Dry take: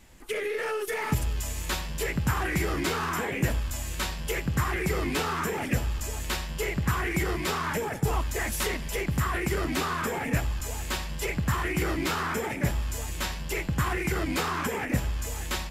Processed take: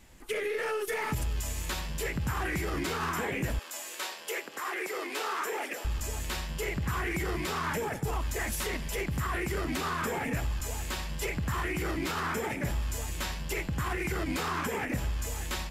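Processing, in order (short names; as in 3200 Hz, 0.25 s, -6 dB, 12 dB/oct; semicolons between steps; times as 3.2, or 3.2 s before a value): limiter -21.5 dBFS, peak gain reduction 6 dB; 3.59–5.85 HPF 370 Hz 24 dB/oct; gain -1.5 dB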